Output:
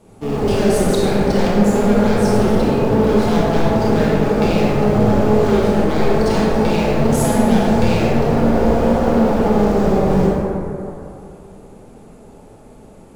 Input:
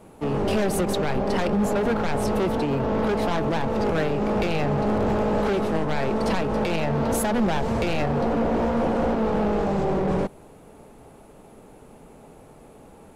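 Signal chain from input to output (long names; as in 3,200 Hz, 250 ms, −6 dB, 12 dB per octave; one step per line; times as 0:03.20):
parametric band 6,000 Hz +13 dB 2.6 octaves
in parallel at −9 dB: bit reduction 4 bits
on the sum: tilt shelving filter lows +5.5 dB, about 780 Hz
convolution reverb RT60 2.8 s, pre-delay 23 ms, DRR −6 dB
level −6 dB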